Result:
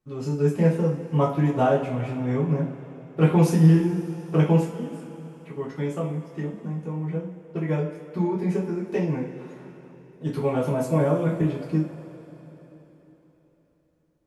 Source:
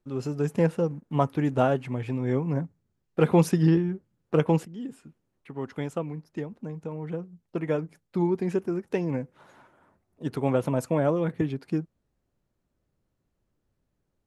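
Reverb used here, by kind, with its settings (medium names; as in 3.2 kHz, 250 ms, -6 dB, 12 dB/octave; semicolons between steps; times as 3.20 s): two-slope reverb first 0.4 s, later 3.9 s, from -18 dB, DRR -6 dB; trim -5 dB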